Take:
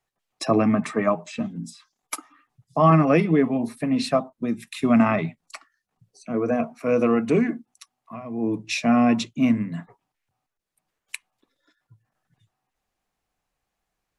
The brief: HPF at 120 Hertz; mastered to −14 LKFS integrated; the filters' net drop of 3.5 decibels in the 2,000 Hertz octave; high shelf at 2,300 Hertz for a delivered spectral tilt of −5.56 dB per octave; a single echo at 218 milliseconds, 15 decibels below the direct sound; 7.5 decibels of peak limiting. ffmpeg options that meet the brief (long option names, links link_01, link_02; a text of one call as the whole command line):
ffmpeg -i in.wav -af "highpass=120,equalizer=frequency=2000:width_type=o:gain=-7.5,highshelf=frequency=2300:gain=5,alimiter=limit=-13.5dB:level=0:latency=1,aecho=1:1:218:0.178,volume=11dB" out.wav